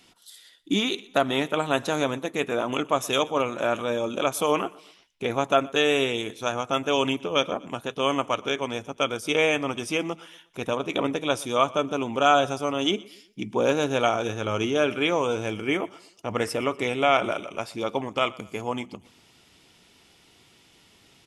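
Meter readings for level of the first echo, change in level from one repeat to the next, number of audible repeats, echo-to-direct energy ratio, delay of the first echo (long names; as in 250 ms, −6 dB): −22.5 dB, −7.5 dB, 2, −21.5 dB, 121 ms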